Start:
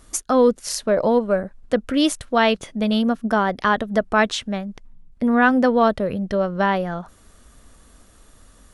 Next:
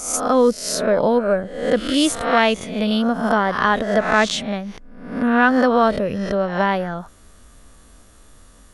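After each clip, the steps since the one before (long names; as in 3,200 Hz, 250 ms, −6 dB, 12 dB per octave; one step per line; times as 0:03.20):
peak hold with a rise ahead of every peak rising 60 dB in 0.67 s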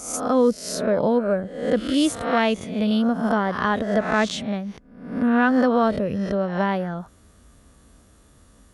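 high-pass filter 59 Hz 12 dB per octave
low-shelf EQ 410 Hz +7.5 dB
level −6.5 dB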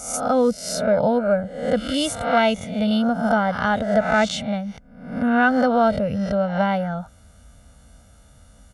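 comb filter 1.4 ms, depth 80%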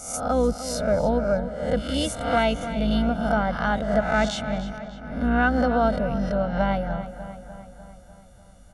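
sub-octave generator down 2 octaves, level −2 dB
feedback echo with a low-pass in the loop 298 ms, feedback 60%, low-pass 4,800 Hz, level −12 dB
level −4 dB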